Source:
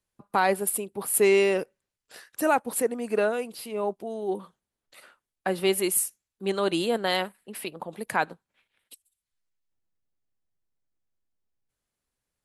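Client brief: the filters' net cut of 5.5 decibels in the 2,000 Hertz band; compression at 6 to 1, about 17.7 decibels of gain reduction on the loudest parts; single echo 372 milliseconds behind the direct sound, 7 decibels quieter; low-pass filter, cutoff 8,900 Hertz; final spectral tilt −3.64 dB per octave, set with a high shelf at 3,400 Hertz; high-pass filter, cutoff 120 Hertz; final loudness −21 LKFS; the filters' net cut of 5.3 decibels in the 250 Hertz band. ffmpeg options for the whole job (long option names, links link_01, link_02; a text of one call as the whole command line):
ffmpeg -i in.wav -af "highpass=120,lowpass=8900,equalizer=frequency=250:width_type=o:gain=-8.5,equalizer=frequency=2000:width_type=o:gain=-6,highshelf=frequency=3400:gain=-4.5,acompressor=threshold=-40dB:ratio=6,aecho=1:1:372:0.447,volume=22.5dB" out.wav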